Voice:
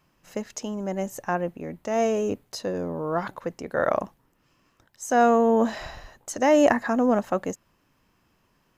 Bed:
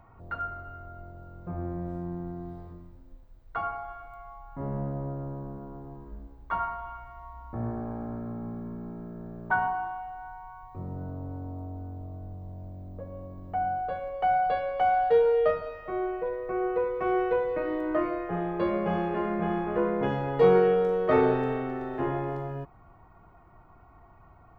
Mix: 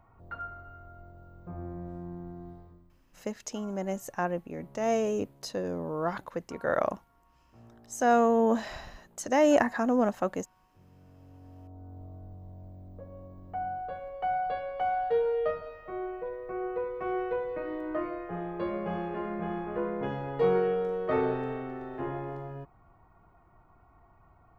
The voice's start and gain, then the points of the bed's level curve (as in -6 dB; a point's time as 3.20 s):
2.90 s, -4.0 dB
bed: 2.50 s -5.5 dB
3.44 s -22 dB
10.88 s -22 dB
12.01 s -5.5 dB